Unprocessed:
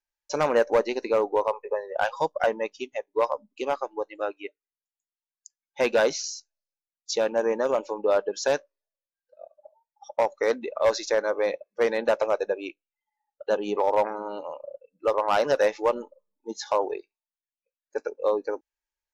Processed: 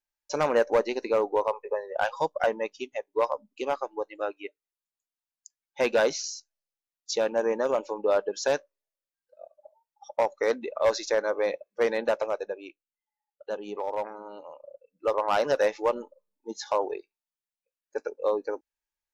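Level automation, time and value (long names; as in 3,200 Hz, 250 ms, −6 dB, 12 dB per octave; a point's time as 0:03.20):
0:11.97 −1.5 dB
0:12.66 −8.5 dB
0:14.57 −8.5 dB
0:15.11 −2 dB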